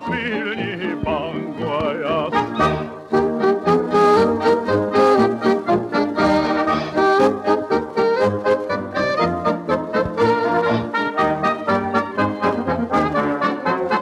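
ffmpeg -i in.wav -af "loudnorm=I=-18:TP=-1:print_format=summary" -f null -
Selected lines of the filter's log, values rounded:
Input Integrated:    -19.0 LUFS
Input True Peak:      -4.7 dBTP
Input LRA:             2.9 LU
Input Threshold:     -29.0 LUFS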